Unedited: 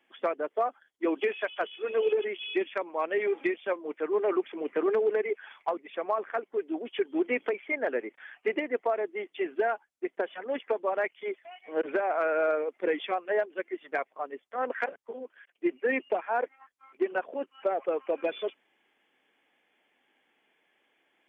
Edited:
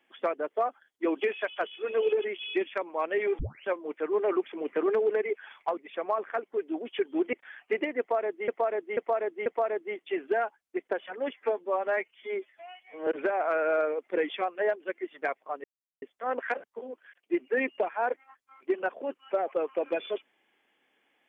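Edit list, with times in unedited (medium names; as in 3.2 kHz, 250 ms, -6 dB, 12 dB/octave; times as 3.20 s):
3.39 s: tape start 0.27 s
7.33–8.08 s: delete
8.74–9.23 s: loop, 4 plays
10.61–11.77 s: stretch 1.5×
14.34 s: insert silence 0.38 s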